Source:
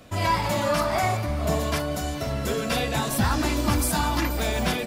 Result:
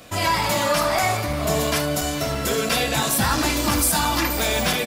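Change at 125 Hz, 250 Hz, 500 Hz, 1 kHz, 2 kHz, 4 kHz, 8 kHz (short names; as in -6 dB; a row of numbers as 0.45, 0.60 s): -0.5, +1.5, +3.0, +3.5, +5.5, +7.0, +8.5 dB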